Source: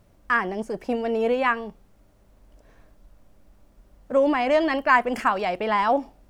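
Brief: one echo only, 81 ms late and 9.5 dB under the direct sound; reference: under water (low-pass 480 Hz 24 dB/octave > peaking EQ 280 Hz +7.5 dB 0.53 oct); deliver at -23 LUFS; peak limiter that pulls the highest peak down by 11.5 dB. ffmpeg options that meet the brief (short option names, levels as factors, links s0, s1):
-af "alimiter=limit=0.141:level=0:latency=1,lowpass=f=480:w=0.5412,lowpass=f=480:w=1.3066,equalizer=f=280:t=o:w=0.53:g=7.5,aecho=1:1:81:0.335,volume=1.58"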